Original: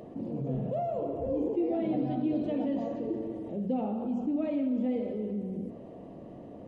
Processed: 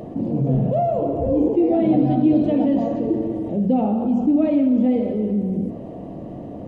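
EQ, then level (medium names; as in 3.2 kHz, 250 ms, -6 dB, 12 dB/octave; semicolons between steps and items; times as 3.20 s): tone controls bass +7 dB, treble +1 dB; peaking EQ 310 Hz +3.5 dB 0.24 oct; peaking EQ 720 Hz +4 dB 0.74 oct; +8.0 dB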